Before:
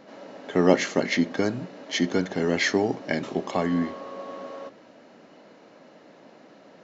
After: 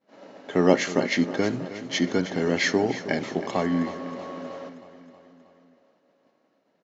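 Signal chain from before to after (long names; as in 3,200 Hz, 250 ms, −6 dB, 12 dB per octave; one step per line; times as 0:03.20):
downward expander −38 dBFS
repeating echo 317 ms, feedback 60%, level −13.5 dB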